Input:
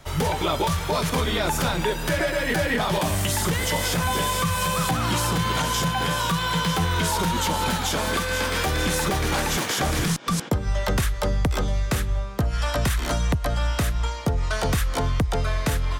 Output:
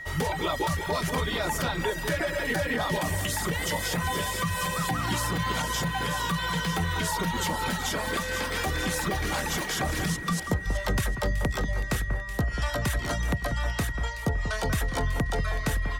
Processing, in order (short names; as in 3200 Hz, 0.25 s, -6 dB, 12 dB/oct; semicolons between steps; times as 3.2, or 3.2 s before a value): reverb removal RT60 0.84 s; whine 1900 Hz -33 dBFS; echo with dull and thin repeats by turns 0.188 s, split 2000 Hz, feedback 64%, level -8.5 dB; gain -4 dB